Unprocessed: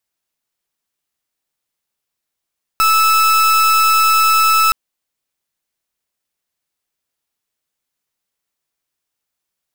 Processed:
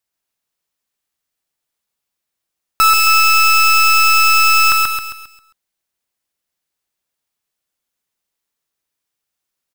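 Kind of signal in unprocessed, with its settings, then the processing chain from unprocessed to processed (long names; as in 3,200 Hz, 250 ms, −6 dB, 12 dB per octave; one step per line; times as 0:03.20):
pulse wave 1,310 Hz, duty 38% −12 dBFS 1.92 s
on a send: repeating echo 134 ms, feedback 44%, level −3.5 dB
on the sum: leveller curve on the samples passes 1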